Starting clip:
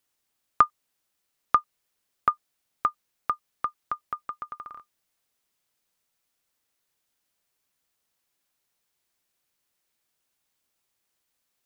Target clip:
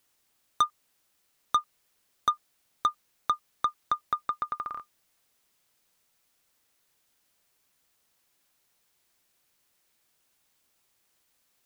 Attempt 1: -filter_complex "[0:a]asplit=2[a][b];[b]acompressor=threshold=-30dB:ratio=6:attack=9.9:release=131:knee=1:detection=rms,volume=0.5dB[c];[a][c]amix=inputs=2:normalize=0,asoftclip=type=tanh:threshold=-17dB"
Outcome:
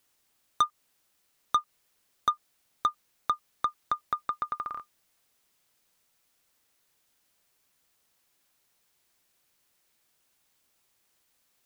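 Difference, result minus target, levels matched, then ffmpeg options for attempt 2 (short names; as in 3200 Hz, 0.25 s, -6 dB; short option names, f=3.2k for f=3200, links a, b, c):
compressor: peak gain reduction +6 dB
-filter_complex "[0:a]asplit=2[a][b];[b]acompressor=threshold=-23dB:ratio=6:attack=9.9:release=131:knee=1:detection=rms,volume=0.5dB[c];[a][c]amix=inputs=2:normalize=0,asoftclip=type=tanh:threshold=-17dB"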